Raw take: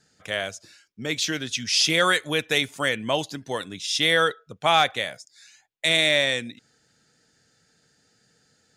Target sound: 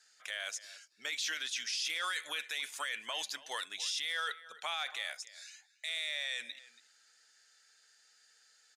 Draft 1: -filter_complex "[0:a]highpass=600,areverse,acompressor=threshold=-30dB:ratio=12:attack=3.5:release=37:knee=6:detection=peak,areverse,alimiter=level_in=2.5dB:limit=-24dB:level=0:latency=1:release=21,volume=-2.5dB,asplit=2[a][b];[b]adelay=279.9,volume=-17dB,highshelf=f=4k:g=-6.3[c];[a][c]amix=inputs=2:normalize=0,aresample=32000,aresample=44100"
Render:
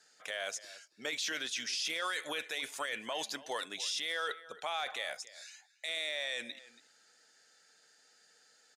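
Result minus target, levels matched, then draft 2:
500 Hz band +9.0 dB
-filter_complex "[0:a]highpass=1.3k,areverse,acompressor=threshold=-30dB:ratio=12:attack=3.5:release=37:knee=6:detection=peak,areverse,alimiter=level_in=2.5dB:limit=-24dB:level=0:latency=1:release=21,volume=-2.5dB,asplit=2[a][b];[b]adelay=279.9,volume=-17dB,highshelf=f=4k:g=-6.3[c];[a][c]amix=inputs=2:normalize=0,aresample=32000,aresample=44100"

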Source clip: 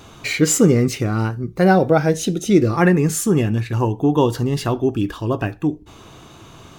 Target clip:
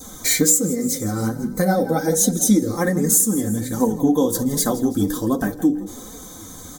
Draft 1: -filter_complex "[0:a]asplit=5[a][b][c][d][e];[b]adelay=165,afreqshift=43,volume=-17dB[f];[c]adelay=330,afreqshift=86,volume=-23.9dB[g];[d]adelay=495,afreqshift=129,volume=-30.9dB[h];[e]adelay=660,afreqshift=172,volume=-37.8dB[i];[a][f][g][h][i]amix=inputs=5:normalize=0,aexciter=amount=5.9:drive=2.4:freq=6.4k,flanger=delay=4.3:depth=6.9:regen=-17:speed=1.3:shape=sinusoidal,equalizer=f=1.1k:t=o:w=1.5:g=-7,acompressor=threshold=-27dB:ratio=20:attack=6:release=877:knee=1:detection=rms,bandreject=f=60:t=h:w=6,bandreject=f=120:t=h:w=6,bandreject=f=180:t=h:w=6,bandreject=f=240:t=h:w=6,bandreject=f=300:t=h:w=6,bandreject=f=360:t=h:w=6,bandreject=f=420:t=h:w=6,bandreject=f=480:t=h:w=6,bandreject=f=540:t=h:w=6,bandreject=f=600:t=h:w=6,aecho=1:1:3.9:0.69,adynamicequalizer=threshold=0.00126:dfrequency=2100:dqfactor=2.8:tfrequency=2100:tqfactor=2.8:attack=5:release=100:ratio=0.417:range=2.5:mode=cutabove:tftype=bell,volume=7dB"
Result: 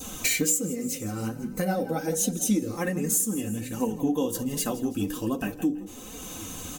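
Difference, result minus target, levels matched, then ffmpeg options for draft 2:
compressor: peak gain reduction +8.5 dB; 2000 Hz band +4.0 dB
-filter_complex "[0:a]asplit=5[a][b][c][d][e];[b]adelay=165,afreqshift=43,volume=-17dB[f];[c]adelay=330,afreqshift=86,volume=-23.9dB[g];[d]adelay=495,afreqshift=129,volume=-30.9dB[h];[e]adelay=660,afreqshift=172,volume=-37.8dB[i];[a][f][g][h][i]amix=inputs=5:normalize=0,aexciter=amount=5.9:drive=2.4:freq=6.4k,flanger=delay=4.3:depth=6.9:regen=-17:speed=1.3:shape=sinusoidal,equalizer=f=1.1k:t=o:w=1.5:g=-7,acompressor=threshold=-18dB:ratio=20:attack=6:release=877:knee=1:detection=rms,bandreject=f=60:t=h:w=6,bandreject=f=120:t=h:w=6,bandreject=f=180:t=h:w=6,bandreject=f=240:t=h:w=6,bandreject=f=300:t=h:w=6,bandreject=f=360:t=h:w=6,bandreject=f=420:t=h:w=6,bandreject=f=480:t=h:w=6,bandreject=f=540:t=h:w=6,bandreject=f=600:t=h:w=6,aecho=1:1:3.9:0.69,adynamicequalizer=threshold=0.00126:dfrequency=2100:dqfactor=2.8:tfrequency=2100:tqfactor=2.8:attack=5:release=100:ratio=0.417:range=2.5:mode=cutabove:tftype=bell,asuperstop=centerf=2700:order=4:qfactor=2.4,volume=7dB"

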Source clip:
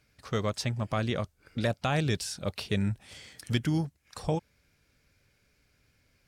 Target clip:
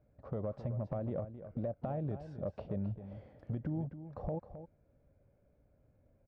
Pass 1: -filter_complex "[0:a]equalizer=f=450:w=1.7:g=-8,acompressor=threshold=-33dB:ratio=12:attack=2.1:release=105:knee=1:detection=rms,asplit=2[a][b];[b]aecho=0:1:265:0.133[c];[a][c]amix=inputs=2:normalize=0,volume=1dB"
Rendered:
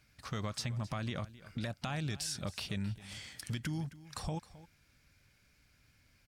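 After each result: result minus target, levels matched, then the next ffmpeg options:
500 Hz band -7.5 dB; echo-to-direct -6 dB
-filter_complex "[0:a]lowpass=f=570:t=q:w=3.8,equalizer=f=450:w=1.7:g=-8,acompressor=threshold=-33dB:ratio=12:attack=2.1:release=105:knee=1:detection=rms,asplit=2[a][b];[b]aecho=0:1:265:0.133[c];[a][c]amix=inputs=2:normalize=0,volume=1dB"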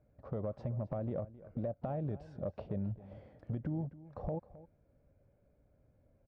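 echo-to-direct -6 dB
-filter_complex "[0:a]lowpass=f=570:t=q:w=3.8,equalizer=f=450:w=1.7:g=-8,acompressor=threshold=-33dB:ratio=12:attack=2.1:release=105:knee=1:detection=rms,asplit=2[a][b];[b]aecho=0:1:265:0.266[c];[a][c]amix=inputs=2:normalize=0,volume=1dB"

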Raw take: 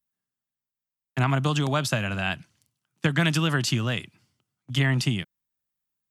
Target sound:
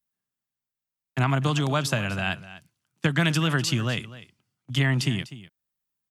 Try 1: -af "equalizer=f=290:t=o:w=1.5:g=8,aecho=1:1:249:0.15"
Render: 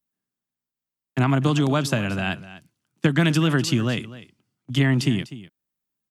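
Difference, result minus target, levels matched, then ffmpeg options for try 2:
250 Hz band +3.0 dB
-af "aecho=1:1:249:0.15"

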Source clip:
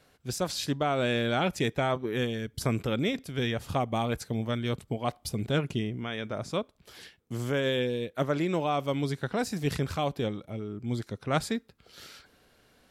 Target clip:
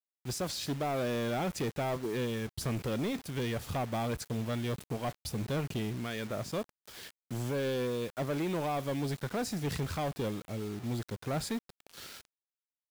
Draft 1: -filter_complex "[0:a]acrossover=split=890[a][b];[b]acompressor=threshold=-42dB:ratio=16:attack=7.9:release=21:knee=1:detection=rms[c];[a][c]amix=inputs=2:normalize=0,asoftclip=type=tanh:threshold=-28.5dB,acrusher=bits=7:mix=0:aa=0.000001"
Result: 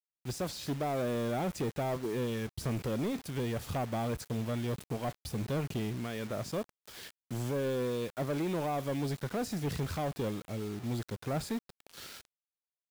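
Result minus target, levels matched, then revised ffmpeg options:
compressor: peak gain reduction +6 dB
-filter_complex "[0:a]acrossover=split=890[a][b];[b]acompressor=threshold=-35.5dB:ratio=16:attack=7.9:release=21:knee=1:detection=rms[c];[a][c]amix=inputs=2:normalize=0,asoftclip=type=tanh:threshold=-28.5dB,acrusher=bits=7:mix=0:aa=0.000001"

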